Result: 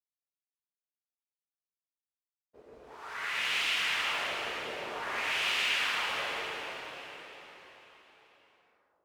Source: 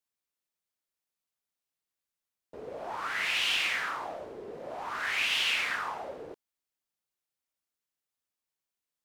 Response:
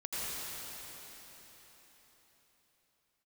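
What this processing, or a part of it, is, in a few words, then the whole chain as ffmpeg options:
cathedral: -filter_complex "[0:a]asettb=1/sr,asplit=3[a][b][c];[a]atrim=end=2.624[d];[b]atrim=start=2.62:end=3.15,asetpts=PTS-STARTPTS,afade=t=in:d=0.004:c=qsin,afade=t=out:st=0.526:d=0.004:c=qsin,highpass=1.1k[e];[c]atrim=start=3.146[f];[d][e]acrossfade=d=0.004:c1=hsin:c2=qsin[g];[g][f]acrossfade=d=0.004:c1=qsin:c2=hsin,agate=range=-33dB:threshold=-43dB:ratio=3:detection=peak[h];[1:a]atrim=start_sample=2205[i];[h][i]afir=irnorm=-1:irlink=0,volume=-5dB"

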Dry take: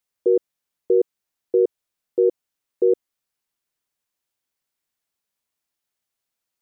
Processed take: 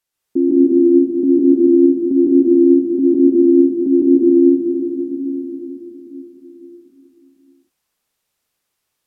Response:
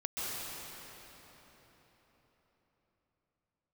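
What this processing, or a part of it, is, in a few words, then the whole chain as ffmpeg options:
slowed and reverbed: -filter_complex "[0:a]asetrate=32193,aresample=44100[a];[1:a]atrim=start_sample=2205[b];[a][b]afir=irnorm=-1:irlink=0,volume=4.5dB"

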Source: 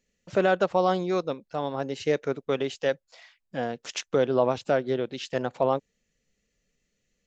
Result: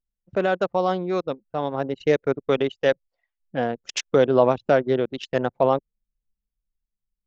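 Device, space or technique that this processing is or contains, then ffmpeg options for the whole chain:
voice memo with heavy noise removal: -af "anlmdn=10,dynaudnorm=f=230:g=13:m=6dB"

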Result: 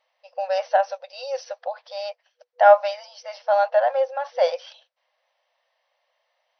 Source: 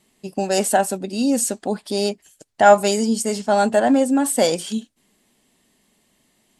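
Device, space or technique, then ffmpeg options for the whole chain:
through cloth: -filter_complex "[0:a]asettb=1/sr,asplit=3[a][b][c];[a]atrim=end=0.834[d];[b]atrim=start=0.83:end=1.45,asetpts=PTS-STARTPTS,afade=t=in:d=0.004:c=qsin,afade=t=out:st=0.616:d=0.004:c=qsin,aemphasis=mode=production:type=50fm[e];[c]atrim=start=1.446[f];[d][e]acrossfade=d=0.004:c1=hsin:c2=qsin[g];[g][f]acrossfade=d=0.004:c1=qsin:c2=hsin,highshelf=f=2.6k:g=-14,afftfilt=real='re*between(b*sr/4096,490,6100)':imag='im*between(b*sr/4096,490,6100)':win_size=4096:overlap=0.75"

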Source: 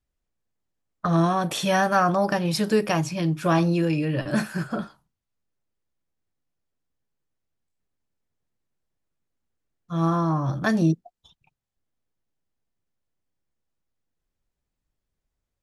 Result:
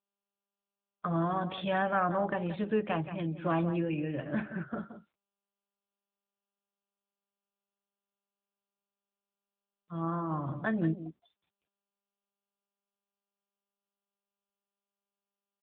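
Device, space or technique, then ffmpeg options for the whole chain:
mobile call with aggressive noise cancelling: -af "highpass=150,aecho=1:1:174:0.266,afftdn=nr=22:nf=-44,volume=-8dB" -ar 8000 -c:a libopencore_amrnb -b:a 10200

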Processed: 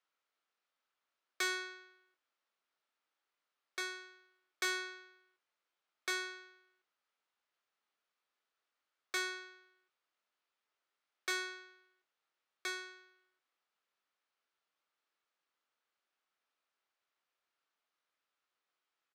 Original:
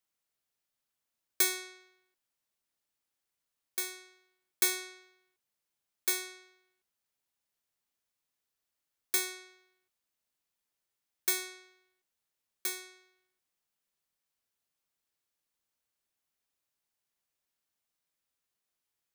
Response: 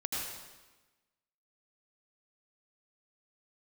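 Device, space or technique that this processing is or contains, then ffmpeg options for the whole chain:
intercom: -filter_complex "[0:a]highpass=360,lowpass=3.7k,equalizer=f=1.3k:t=o:w=0.43:g=6,asoftclip=type=tanh:threshold=-31.5dB,asplit=2[a][b];[b]adelay=25,volume=-9dB[c];[a][c]amix=inputs=2:normalize=0,volume=2.5dB"

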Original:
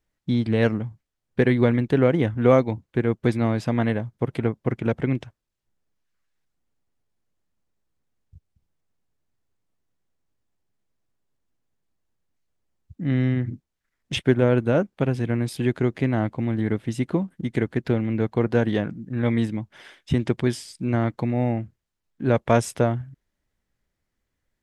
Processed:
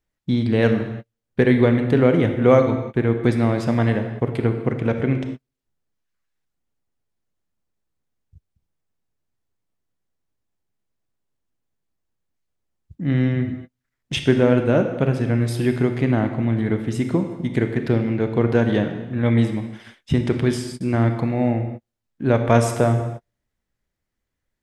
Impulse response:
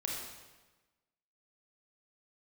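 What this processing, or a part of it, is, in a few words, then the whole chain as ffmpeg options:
keyed gated reverb: -filter_complex "[0:a]asplit=3[a][b][c];[1:a]atrim=start_sample=2205[d];[b][d]afir=irnorm=-1:irlink=0[e];[c]apad=whole_len=1086031[f];[e][f]sidechaingate=range=-45dB:threshold=-44dB:ratio=16:detection=peak,volume=-2.5dB[g];[a][g]amix=inputs=2:normalize=0,volume=-2dB"

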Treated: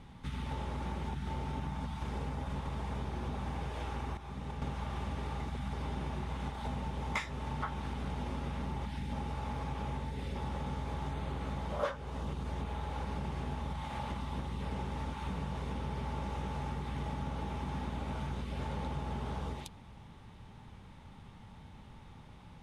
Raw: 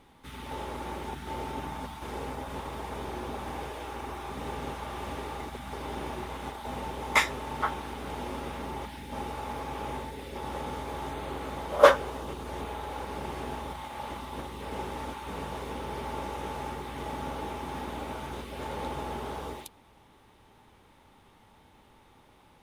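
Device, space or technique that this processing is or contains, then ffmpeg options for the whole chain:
jukebox: -filter_complex "[0:a]asettb=1/sr,asplit=3[a][b][c];[a]atrim=end=4.174[d];[b]atrim=start=4.17:end=4.62,asetpts=PTS-STARTPTS,afade=t=in:d=0.004:c=qsin,afade=t=out:st=0.446:d=0.004:c=qsin,agate=range=-10dB:threshold=-33dB:ratio=16:detection=peak[e];[c]atrim=start=4.616[f];[d][e]acrossfade=d=0.004:c1=hsin:c2=qsin[g];[g][f]acrossfade=d=0.004:c1=qsin:c2=hsin,lowpass=7.9k,lowshelf=f=240:t=q:w=1.5:g=9,acompressor=threshold=-36dB:ratio=4,volume=1dB"

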